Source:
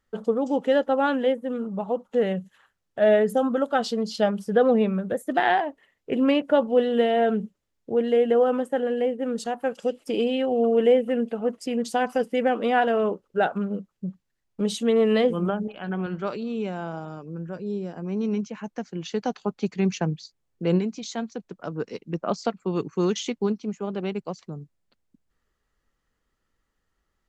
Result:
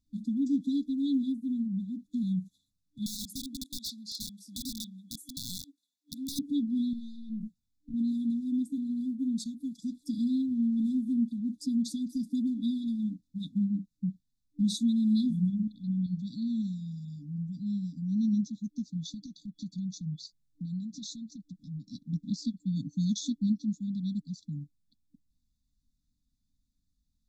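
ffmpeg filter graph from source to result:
-filter_complex "[0:a]asettb=1/sr,asplit=3[s0][s1][s2];[s0]atrim=end=3.064[s3];[s1]atrim=start=3.06:end=6.39,asetpts=PTS-STARTPTS,afade=t=in:d=0.004:c=qsin,afade=t=out:st=3.326:d=0.004:c=qsin,highpass=650,acompressor=threshold=0.0562:ratio=10:attack=3.2:release=140:knee=1:detection=peak,aeval=exprs='(mod(17.8*val(0)+1,2)-1)/17.8':c=same[s4];[s2]atrim=start=6.386[s5];[s3][s4]acrossfade=d=0.004:c1=hsin:c2=qsin[s6];[s6][s5]acrossfade=d=0.004:c1=qsin:c2=hsin,asettb=1/sr,asplit=3[s7][s8][s9];[s7]atrim=end=6.934[s10];[s8]atrim=start=6.93:end=7.94,asetpts=PTS-STARTPTS,afade=t=in:d=0.004:c=qsin,afade=t=out:st=1.006:d=0.004:c=qsin,acompressor=threshold=0.0355:ratio=12:attack=3.2:release=140:knee=1:detection=peak,aeval=exprs='(tanh(35.5*val(0)+0.45)-tanh(0.45))/35.5':c=same,asplit=2[s11][s12];[s12]adelay=18,volume=0.398[s13];[s11][s13]amix=inputs=2:normalize=0,atrim=end_sample=44541[s14];[s9]atrim=start=7.936[s15];[s10][s14]acrossfade=d=0.004:c1=hsin:c2=qsin[s16];[s16][s15]acrossfade=d=0.004:c1=qsin:c2=hsin,asettb=1/sr,asplit=3[s17][s18][s19];[s17]atrim=end=19.144[s20];[s18]atrim=start=19.14:end=21.9,asetpts=PTS-STARTPTS,afade=t=in:d=0.004:c=qsin,afade=t=out:st=2.756:d=0.004:c=qsin,acompressor=threshold=0.02:ratio=4:attack=3.2:release=140:knee=1:detection=peak,aecho=1:1:6:0.36,atrim=end_sample=121716[s21];[s19]atrim=start=21.896[s22];[s20][s21]acrossfade=d=0.004:c1=hsin:c2=qsin[s23];[s23][s22]acrossfade=d=0.004:c1=qsin:c2=hsin,afftfilt=real='re*(1-between(b*sr/4096,300,3400))':imag='im*(1-between(b*sr/4096,300,3400))':win_size=4096:overlap=0.75,highshelf=f=4800:g=-5"

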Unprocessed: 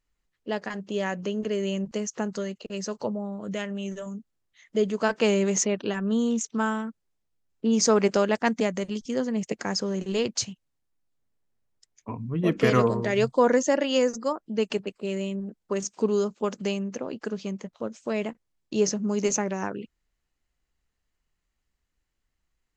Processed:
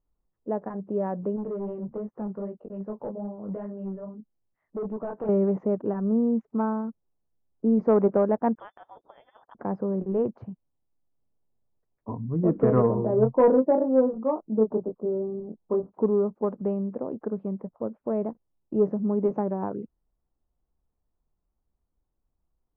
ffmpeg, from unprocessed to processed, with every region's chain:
-filter_complex "[0:a]asettb=1/sr,asplit=3[s0][s1][s2];[s0]atrim=end=1.364[s3];[s1]atrim=start=1.36:end=5.29,asetpts=PTS-STARTPTS,afade=t=in:d=0.004:c=qsin,afade=t=out:st=3.926:d=0.004:c=qsin,flanger=delay=18:depth=3.5:speed=2.5,asoftclip=type=hard:threshold=0.0335[s4];[s2]atrim=start=5.286[s5];[s3][s4]acrossfade=d=0.004:c1=hsin:c2=qsin[s6];[s6][s5]acrossfade=d=0.004:c1=qsin:c2=hsin,asettb=1/sr,asplit=3[s7][s8][s9];[s7]atrim=end=8.554[s10];[s8]atrim=start=8.55:end=9.55,asetpts=PTS-STARTPTS,afade=t=in:d=0.004:c=qsin,afade=t=out:st=0.996:d=0.004:c=qsin,equalizer=f=120:w=0.38:g=-11,lowpass=f=3100:t=q:w=0.5098,lowpass=f=3100:t=q:w=0.6013,lowpass=f=3100:t=q:w=0.9,lowpass=f=3100:t=q:w=2.563,afreqshift=-3700[s11];[s9]atrim=start=9.546[s12];[s10][s11]acrossfade=d=0.004:c1=hsin:c2=qsin[s13];[s13][s12]acrossfade=d=0.004:c1=qsin:c2=hsin,asettb=1/sr,asplit=3[s14][s15][s16];[s14]atrim=end=12.954[s17];[s15]atrim=start=12.95:end=15.92,asetpts=PTS-STARTPTS,afade=t=in:d=0.004:c=qsin,afade=t=out:st=2.966:d=0.004:c=qsin,lowpass=f=1200:w=0.5412,lowpass=f=1200:w=1.3066,asplit=2[s18][s19];[s19]adelay=23,volume=0.631[s20];[s18][s20]amix=inputs=2:normalize=0,atrim=end_sample=130977[s21];[s16]atrim=start=15.916[s22];[s17][s21]acrossfade=d=0.004:c1=hsin:c2=qsin[s23];[s23][s22]acrossfade=d=0.004:c1=qsin:c2=hsin,lowpass=f=1000:w=0.5412,lowpass=f=1000:w=1.3066,acontrast=78,volume=0.531"

